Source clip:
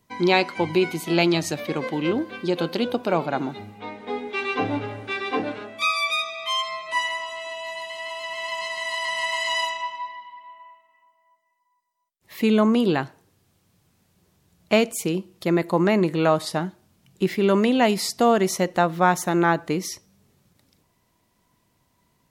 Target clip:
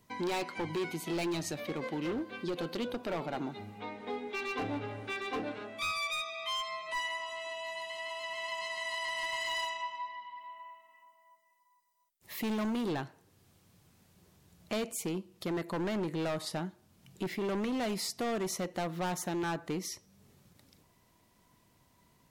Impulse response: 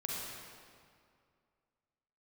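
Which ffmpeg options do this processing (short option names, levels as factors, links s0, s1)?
-filter_complex "[0:a]asoftclip=type=hard:threshold=0.0944,asettb=1/sr,asplit=3[s0][s1][s2];[s0]atrim=end=10.354[s3];[s1]atrim=start=10.35:end=12.89,asetpts=PTS-STARTPTS,afade=t=in:d=0.004:c=qsin,afade=t=out:st=2.536:d=0.004:c=qsin,highshelf=f=6600:g=7.5[s4];[s2]atrim=start=12.886[s5];[s3][s4]acrossfade=d=0.004:c1=hsin:c2=qsin[s6];[s6][s5]acrossfade=d=0.004:c1=qsin:c2=hsin,acompressor=threshold=0.00316:ratio=1.5"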